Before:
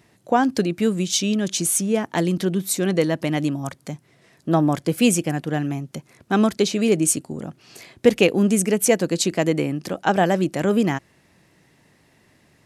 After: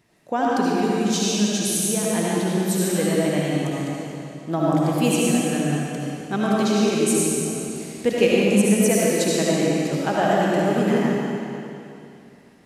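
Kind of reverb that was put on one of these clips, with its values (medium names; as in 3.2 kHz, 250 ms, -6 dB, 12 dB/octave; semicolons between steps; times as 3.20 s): algorithmic reverb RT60 2.8 s, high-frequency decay 0.95×, pre-delay 35 ms, DRR -6 dB; trim -6.5 dB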